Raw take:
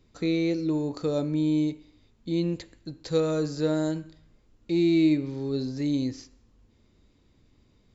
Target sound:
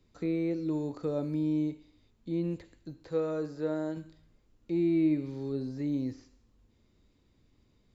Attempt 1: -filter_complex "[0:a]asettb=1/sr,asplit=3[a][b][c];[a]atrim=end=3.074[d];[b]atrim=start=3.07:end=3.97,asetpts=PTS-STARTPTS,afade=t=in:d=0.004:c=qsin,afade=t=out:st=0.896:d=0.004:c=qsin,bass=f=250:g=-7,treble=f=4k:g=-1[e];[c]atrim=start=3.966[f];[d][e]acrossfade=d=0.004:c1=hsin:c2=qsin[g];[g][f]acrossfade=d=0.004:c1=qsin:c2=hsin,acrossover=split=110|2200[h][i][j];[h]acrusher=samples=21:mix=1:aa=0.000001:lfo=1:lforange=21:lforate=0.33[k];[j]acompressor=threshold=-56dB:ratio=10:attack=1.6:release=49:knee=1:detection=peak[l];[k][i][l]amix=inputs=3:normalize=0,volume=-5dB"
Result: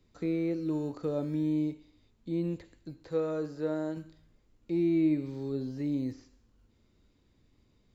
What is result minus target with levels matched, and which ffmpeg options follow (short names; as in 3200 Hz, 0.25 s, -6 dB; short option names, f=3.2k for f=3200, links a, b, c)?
decimation with a swept rate: distortion +9 dB
-filter_complex "[0:a]asettb=1/sr,asplit=3[a][b][c];[a]atrim=end=3.074[d];[b]atrim=start=3.07:end=3.97,asetpts=PTS-STARTPTS,afade=t=in:d=0.004:c=qsin,afade=t=out:st=0.896:d=0.004:c=qsin,bass=f=250:g=-7,treble=f=4k:g=-1[e];[c]atrim=start=3.966[f];[d][e]acrossfade=d=0.004:c1=hsin:c2=qsin[g];[g][f]acrossfade=d=0.004:c1=qsin:c2=hsin,acrossover=split=110|2200[h][i][j];[h]acrusher=samples=8:mix=1:aa=0.000001:lfo=1:lforange=8:lforate=0.33[k];[j]acompressor=threshold=-56dB:ratio=10:attack=1.6:release=49:knee=1:detection=peak[l];[k][i][l]amix=inputs=3:normalize=0,volume=-5dB"